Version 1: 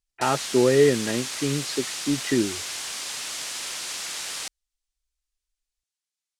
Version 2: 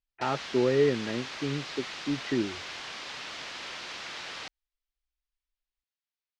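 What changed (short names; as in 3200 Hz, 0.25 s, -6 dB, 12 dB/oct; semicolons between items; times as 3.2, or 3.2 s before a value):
speech -5.5 dB; master: add air absorption 230 m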